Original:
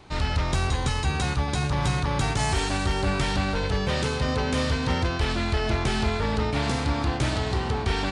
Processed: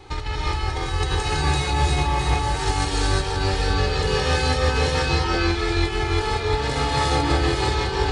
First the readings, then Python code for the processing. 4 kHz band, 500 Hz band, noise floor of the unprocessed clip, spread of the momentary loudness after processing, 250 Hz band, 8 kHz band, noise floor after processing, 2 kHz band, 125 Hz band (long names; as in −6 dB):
+5.0 dB, +4.5 dB, −29 dBFS, 4 LU, +0.5 dB, +3.5 dB, −27 dBFS, +3.5 dB, +2.5 dB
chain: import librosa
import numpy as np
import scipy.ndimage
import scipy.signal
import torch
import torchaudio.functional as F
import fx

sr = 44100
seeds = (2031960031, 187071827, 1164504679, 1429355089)

y = x + 0.79 * np.pad(x, (int(2.4 * sr / 1000.0), 0))[:len(x)]
y = fx.over_compress(y, sr, threshold_db=-25.0, ratio=-0.5)
y = fx.rev_gated(y, sr, seeds[0], gate_ms=390, shape='rising', drr_db=-5.0)
y = y * 10.0 ** (-1.5 / 20.0)